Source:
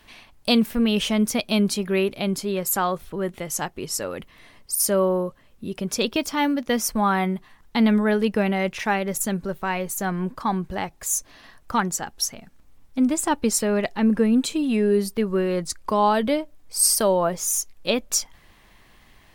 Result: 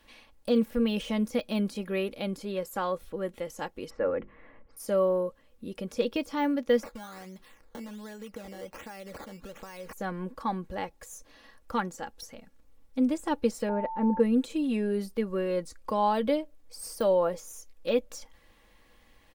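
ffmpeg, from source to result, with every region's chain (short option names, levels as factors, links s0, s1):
-filter_complex "[0:a]asettb=1/sr,asplit=3[s0][s1][s2];[s0]atrim=end=3.904[s3];[s1]atrim=start=3.9:end=4.77,asetpts=PTS-STARTPTS,afade=t=in:d=0.004:c=qsin,afade=t=out:st=0.866:d=0.004:c=qsin,lowpass=f=2000:w=0.5412,lowpass=f=2000:w=1.3066,bandreject=f=50:t=h:w=6,bandreject=f=100:t=h:w=6,bandreject=f=150:t=h:w=6,bandreject=f=200:t=h:w=6,bandreject=f=250:t=h:w=6,bandreject=f=300:t=h:w=6,bandreject=f=350:t=h:w=6,bandreject=f=400:t=h:w=6,acontrast=29[s4];[s2]atrim=start=4.766[s5];[s3][s4]acrossfade=d=0.004:c1=hsin:c2=qsin[s6];[s6][s5]acrossfade=d=0.004:c1=qsin:c2=hsin,asettb=1/sr,asplit=3[s7][s8][s9];[s7]atrim=end=6.834[s10];[s8]atrim=start=6.83:end=9.93,asetpts=PTS-STARTPTS,afade=t=in:d=0.004:c=qsin,afade=t=out:st=3.096:d=0.004:c=qsin,highshelf=f=2800:g=11,acompressor=threshold=0.0282:ratio=12:attack=3.2:release=140:knee=1:detection=peak,acrusher=samples=12:mix=1:aa=0.000001:lfo=1:lforange=12:lforate=1.3[s11];[s9]atrim=start=9.926[s12];[s10][s11]acrossfade=d=0.004:c1=hsin:c2=qsin[s13];[s13][s12]acrossfade=d=0.004:c1=qsin:c2=hsin,asettb=1/sr,asplit=3[s14][s15][s16];[s14]atrim=end=13.694[s17];[s15]atrim=start=13.69:end=14.2,asetpts=PTS-STARTPTS,afade=t=in:d=0.004:c=qsin,afade=t=out:st=0.506:d=0.004:c=qsin,lowpass=1200,aeval=exprs='val(0)+0.0447*sin(2*PI*890*n/s)':c=same[s18];[s16]atrim=start=14.196[s19];[s17][s18]acrossfade=d=0.004:c1=hsin:c2=qsin[s20];[s20][s19]acrossfade=d=0.004:c1=qsin:c2=hsin,aecho=1:1:3.6:0.45,deesser=0.7,equalizer=f=480:t=o:w=0.25:g=11.5,volume=0.376"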